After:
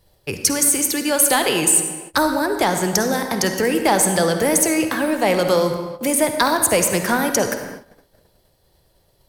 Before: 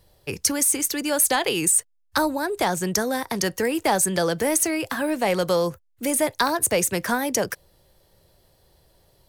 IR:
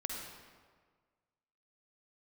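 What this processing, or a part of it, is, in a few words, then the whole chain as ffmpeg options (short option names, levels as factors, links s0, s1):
keyed gated reverb: -filter_complex "[0:a]asplit=3[s0][s1][s2];[1:a]atrim=start_sample=2205[s3];[s1][s3]afir=irnorm=-1:irlink=0[s4];[s2]apad=whole_len=409248[s5];[s4][s5]sidechaingate=range=0.0224:threshold=0.00158:ratio=16:detection=peak,volume=1.19[s6];[s0][s6]amix=inputs=2:normalize=0,volume=0.794"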